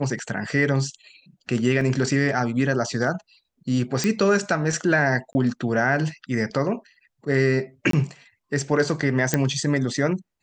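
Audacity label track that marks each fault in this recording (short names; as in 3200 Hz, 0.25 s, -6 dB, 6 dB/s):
1.810000	1.810000	gap 3.4 ms
4.040000	4.040000	pop -9 dBFS
5.330000	5.350000	gap 20 ms
7.910000	7.930000	gap 23 ms
9.340000	9.340000	pop -5 dBFS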